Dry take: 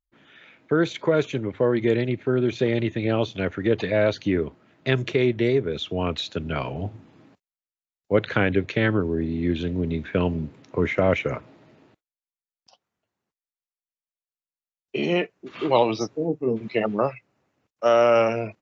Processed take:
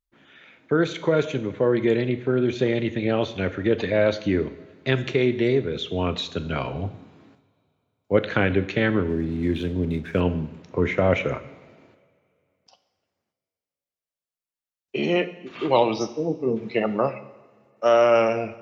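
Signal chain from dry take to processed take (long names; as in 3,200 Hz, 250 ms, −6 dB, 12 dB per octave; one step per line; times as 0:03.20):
coupled-rooms reverb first 0.89 s, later 2.8 s, from −18 dB, DRR 10.5 dB
0:09.09–0:10.21: slack as between gear wheels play −44 dBFS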